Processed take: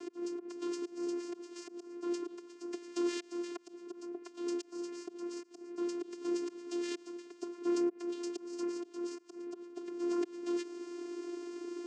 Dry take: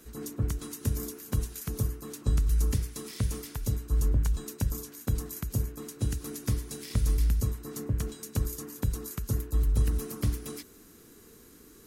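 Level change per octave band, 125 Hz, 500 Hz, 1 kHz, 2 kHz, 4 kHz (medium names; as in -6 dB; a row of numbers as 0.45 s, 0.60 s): under -40 dB, +4.5 dB, -1.5 dB, -3.5 dB, -4.5 dB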